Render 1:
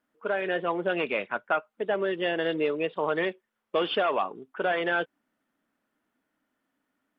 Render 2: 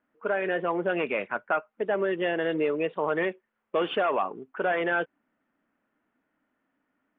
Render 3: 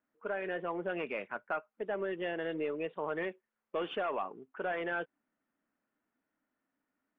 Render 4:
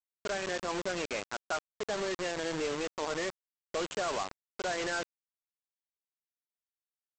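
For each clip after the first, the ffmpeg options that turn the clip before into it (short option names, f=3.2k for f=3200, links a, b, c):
-filter_complex "[0:a]lowpass=f=2.7k:w=0.5412,lowpass=f=2.7k:w=1.3066,asplit=2[a][b];[b]alimiter=limit=-22.5dB:level=0:latency=1,volume=-1.5dB[c];[a][c]amix=inputs=2:normalize=0,volume=-3dB"
-af "aeval=exprs='0.211*(cos(1*acos(clip(val(0)/0.211,-1,1)))-cos(1*PI/2))+0.00266*(cos(4*acos(clip(val(0)/0.211,-1,1)))-cos(4*PI/2))':c=same,volume=-9dB"
-af "aeval=exprs='val(0)+0.5*0.00398*sgn(val(0))':c=same,aresample=16000,acrusher=bits=5:mix=0:aa=0.000001,aresample=44100"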